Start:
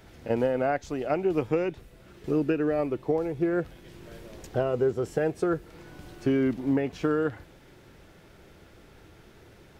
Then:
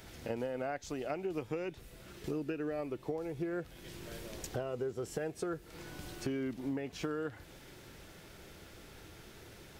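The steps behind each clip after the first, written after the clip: treble shelf 2.9 kHz +9 dB; compression 3:1, threshold -36 dBFS, peak gain reduction 12 dB; trim -1.5 dB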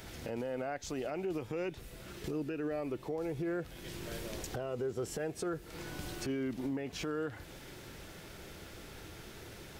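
peak limiter -32.5 dBFS, peak gain reduction 10 dB; trim +4 dB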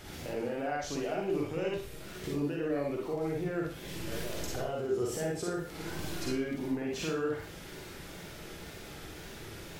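wow and flutter 95 cents; Schroeder reverb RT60 0.41 s, DRR -2 dB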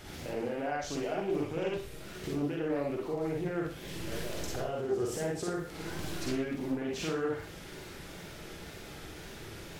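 loudspeaker Doppler distortion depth 0.28 ms

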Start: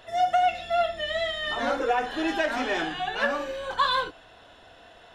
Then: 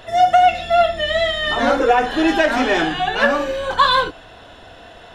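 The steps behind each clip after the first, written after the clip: bass shelf 330 Hz +5 dB; trim +9 dB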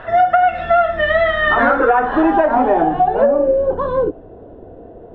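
low-pass sweep 1.5 kHz -> 420 Hz, 1.73–3.80 s; compression, threshold -15 dBFS, peak gain reduction 9 dB; trim +5 dB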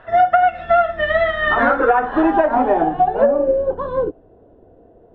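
upward expansion 1.5:1, over -31 dBFS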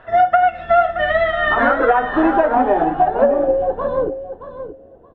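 feedback delay 623 ms, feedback 17%, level -11 dB

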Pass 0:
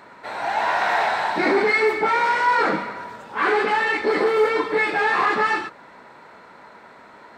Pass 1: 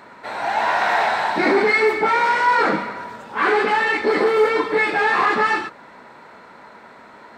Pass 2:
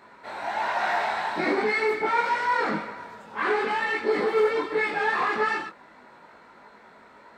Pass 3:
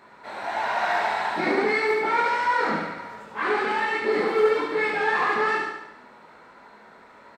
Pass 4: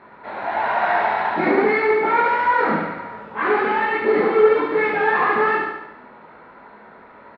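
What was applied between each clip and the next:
peaking EQ 230 Hz +3 dB 0.27 oct; trim +2 dB
chorus voices 6, 0.95 Hz, delay 21 ms, depth 3 ms; trim -4.5 dB
feedback delay 72 ms, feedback 55%, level -5 dB
distance through air 400 m; trim +7 dB

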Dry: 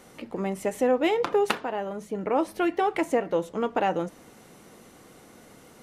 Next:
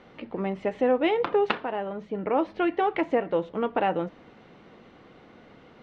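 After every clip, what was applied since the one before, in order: low-pass 3.7 kHz 24 dB/octave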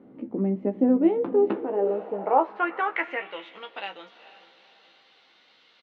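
doubling 15 ms -6 dB; echo that smears into a reverb 456 ms, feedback 43%, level -15 dB; band-pass sweep 260 Hz -> 4 kHz, 1.43–3.65 s; trim +8 dB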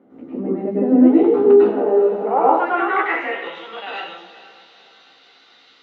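reverberation RT60 0.70 s, pre-delay 95 ms, DRR -7 dB; trim -3.5 dB

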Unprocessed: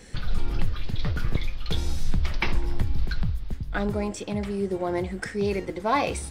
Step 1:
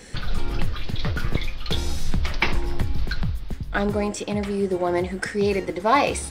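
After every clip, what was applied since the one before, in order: bass shelf 180 Hz -5.5 dB; trim +5.5 dB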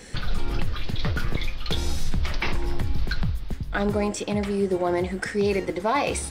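peak limiter -14 dBFS, peak gain reduction 8.5 dB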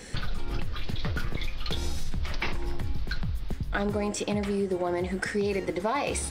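compression, threshold -24 dBFS, peak gain reduction 7.5 dB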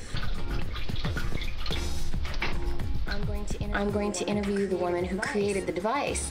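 reverse echo 665 ms -10 dB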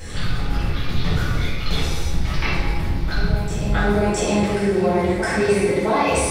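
reverberation RT60 1.6 s, pre-delay 3 ms, DRR -9 dB

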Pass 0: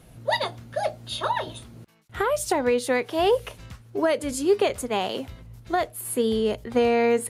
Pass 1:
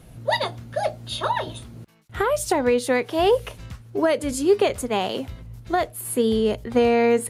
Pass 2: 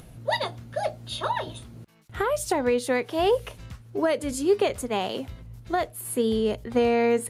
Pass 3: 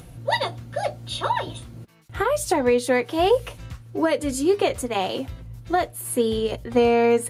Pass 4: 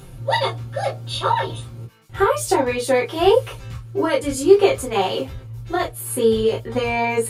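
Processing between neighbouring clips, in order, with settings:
bass shelf 240 Hz +4 dB; trim +1.5 dB
upward compressor, threshold -39 dBFS; trim -3.5 dB
comb of notches 210 Hz; trim +4.5 dB
reverberation, pre-delay 5 ms, DRR -3.5 dB; trim -1.5 dB

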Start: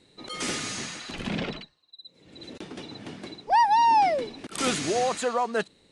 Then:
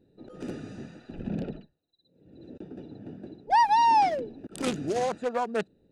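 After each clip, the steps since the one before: local Wiener filter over 41 samples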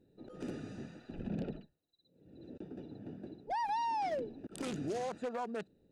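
peak limiter -25 dBFS, peak gain reduction 12 dB; trim -4.5 dB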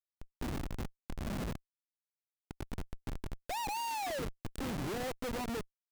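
Schmitt trigger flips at -40 dBFS; trim +4 dB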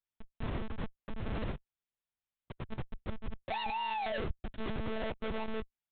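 monotone LPC vocoder at 8 kHz 220 Hz; trim +2 dB

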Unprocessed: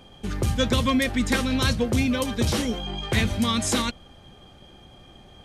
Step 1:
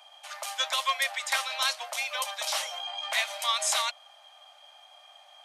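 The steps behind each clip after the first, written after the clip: steep high-pass 600 Hz 96 dB/octave; peaking EQ 1.6 kHz -3.5 dB 0.38 oct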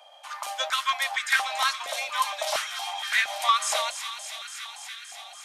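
feedback echo behind a high-pass 285 ms, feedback 80%, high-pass 1.9 kHz, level -9 dB; step-sequenced high-pass 4.3 Hz 540–1600 Hz; trim -1.5 dB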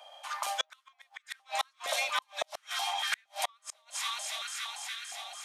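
inverted gate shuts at -17 dBFS, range -40 dB

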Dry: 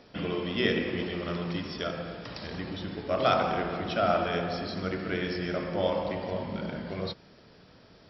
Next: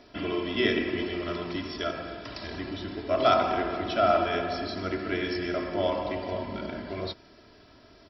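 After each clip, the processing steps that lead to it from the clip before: comb 3 ms, depth 66%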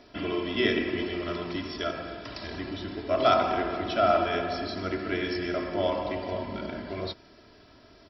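no audible change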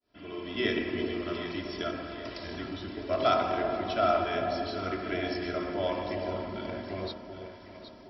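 fade-in on the opening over 0.69 s; echo whose repeats swap between lows and highs 384 ms, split 900 Hz, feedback 66%, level -6.5 dB; trim -3.5 dB

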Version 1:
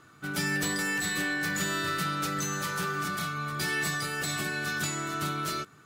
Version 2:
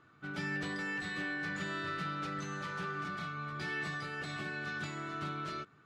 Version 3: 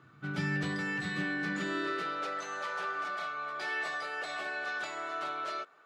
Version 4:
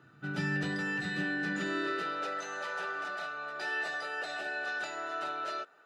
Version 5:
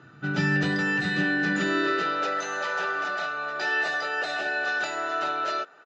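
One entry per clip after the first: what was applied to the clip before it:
low-pass 3.3 kHz 12 dB/octave; trim -7 dB
high-pass sweep 120 Hz -> 610 Hz, 0.99–2.38 s; trim +2.5 dB
comb of notches 1.1 kHz; trim +1 dB
resampled via 16 kHz; trim +8.5 dB

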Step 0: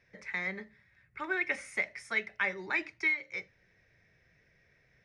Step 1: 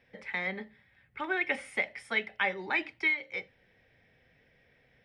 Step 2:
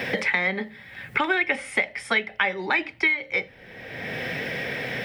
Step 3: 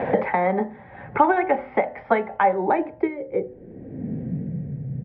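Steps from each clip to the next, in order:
graphic EQ with 31 bands 250 Hz +10 dB, 500 Hz +7 dB, 800 Hz +9 dB, 3.15 kHz +11 dB, 6.3 kHz -11 dB
three bands compressed up and down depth 100%; trim +8.5 dB
resampled via 11.025 kHz; de-hum 124.9 Hz, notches 15; low-pass sweep 830 Hz -> 140 Hz, 2.43–4.83 s; trim +5.5 dB

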